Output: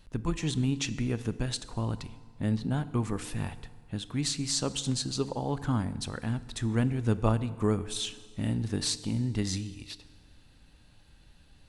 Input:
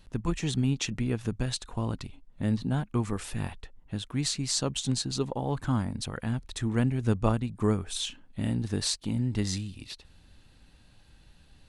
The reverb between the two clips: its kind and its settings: FDN reverb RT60 1.7 s, low-frequency decay 0.95×, high-frequency decay 0.8×, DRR 13.5 dB; gain -1 dB

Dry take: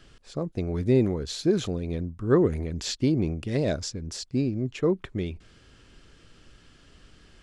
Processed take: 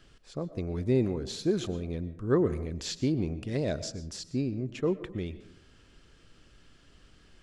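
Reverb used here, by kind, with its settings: digital reverb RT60 0.68 s, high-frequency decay 0.4×, pre-delay 80 ms, DRR 14 dB; gain -4.5 dB

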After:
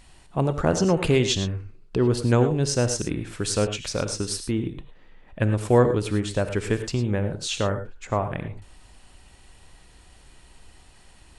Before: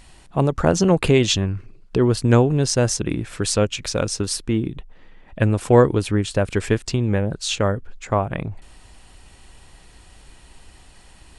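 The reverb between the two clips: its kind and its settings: non-linear reverb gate 0.13 s rising, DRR 8.5 dB; gain -4.5 dB

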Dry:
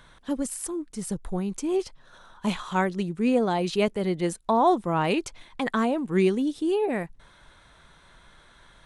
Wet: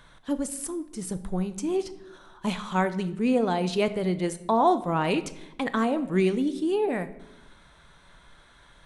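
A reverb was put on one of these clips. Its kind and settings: shoebox room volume 310 m³, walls mixed, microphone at 0.32 m; gain -1 dB

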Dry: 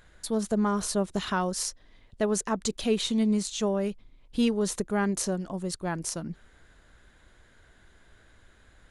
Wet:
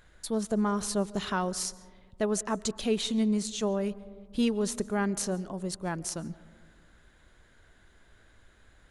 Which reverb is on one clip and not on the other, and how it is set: digital reverb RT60 1.7 s, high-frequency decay 0.25×, pre-delay 0.1 s, DRR 19.5 dB; gain -2 dB

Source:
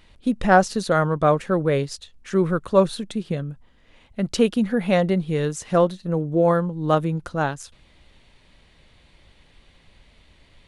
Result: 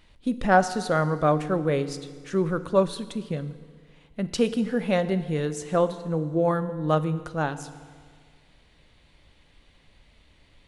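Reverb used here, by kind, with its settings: FDN reverb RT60 1.8 s, low-frequency decay 1×, high-frequency decay 0.9×, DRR 11.5 dB; gain -4 dB

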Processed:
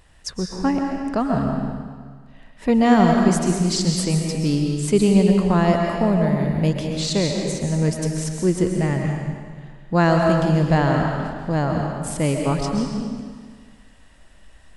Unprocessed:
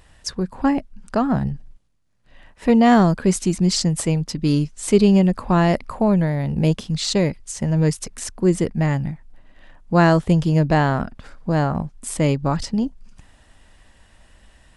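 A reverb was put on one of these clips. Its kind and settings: digital reverb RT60 1.7 s, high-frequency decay 0.95×, pre-delay 90 ms, DRR 1.5 dB; gain -2.5 dB

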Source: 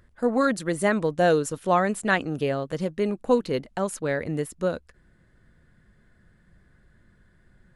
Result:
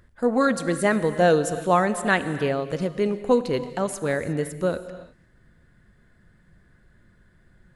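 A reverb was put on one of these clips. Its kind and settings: non-linear reverb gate 0.38 s flat, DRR 11 dB; gain +1.5 dB

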